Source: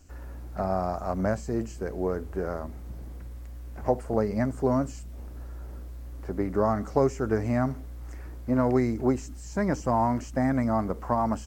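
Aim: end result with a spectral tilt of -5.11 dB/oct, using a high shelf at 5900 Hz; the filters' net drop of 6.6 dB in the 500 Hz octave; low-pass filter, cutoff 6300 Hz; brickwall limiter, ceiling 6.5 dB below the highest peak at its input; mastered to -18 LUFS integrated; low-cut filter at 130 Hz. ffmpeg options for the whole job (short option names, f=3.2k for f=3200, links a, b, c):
-af "highpass=130,lowpass=6.3k,equalizer=f=500:t=o:g=-9,highshelf=f=5.9k:g=3.5,volume=15dB,alimiter=limit=-5dB:level=0:latency=1"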